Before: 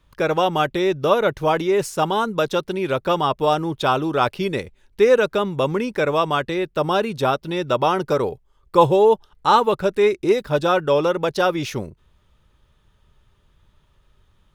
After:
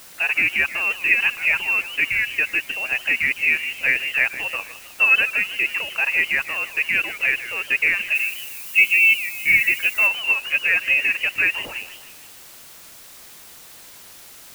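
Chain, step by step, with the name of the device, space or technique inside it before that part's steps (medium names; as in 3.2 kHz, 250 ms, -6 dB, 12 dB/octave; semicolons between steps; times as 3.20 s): 8.13–9.60 s: time-frequency box 1–2.7 kHz -14 dB; scrambled radio voice (band-pass 400–2800 Hz; frequency inversion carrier 3.1 kHz; white noise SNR 21 dB); 8.15–10.07 s: treble shelf 8.1 kHz +11.5 dB; modulated delay 155 ms, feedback 50%, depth 211 cents, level -14 dB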